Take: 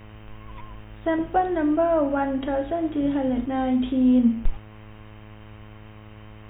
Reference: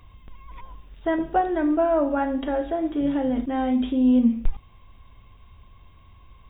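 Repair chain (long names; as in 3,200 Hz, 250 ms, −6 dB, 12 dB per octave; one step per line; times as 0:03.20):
hum removal 106.8 Hz, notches 21
broadband denoise 6 dB, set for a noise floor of −44 dBFS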